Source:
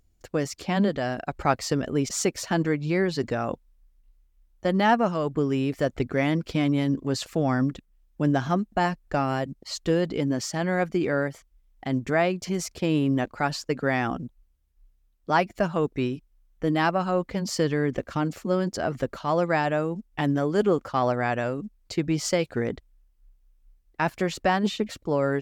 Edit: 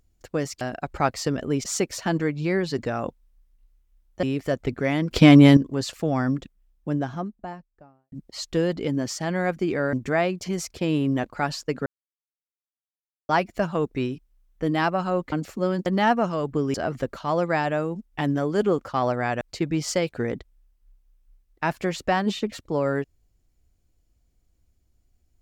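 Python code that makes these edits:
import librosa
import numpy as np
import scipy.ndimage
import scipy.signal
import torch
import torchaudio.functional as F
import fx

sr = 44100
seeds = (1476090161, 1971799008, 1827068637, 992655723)

y = fx.studio_fade_out(x, sr, start_s=7.64, length_s=1.81)
y = fx.edit(y, sr, fx.cut(start_s=0.61, length_s=0.45),
    fx.move(start_s=4.68, length_s=0.88, to_s=18.74),
    fx.clip_gain(start_s=6.44, length_s=0.46, db=12.0),
    fx.cut(start_s=11.26, length_s=0.68),
    fx.silence(start_s=13.87, length_s=1.43),
    fx.cut(start_s=17.33, length_s=0.87),
    fx.cut(start_s=21.41, length_s=0.37), tone=tone)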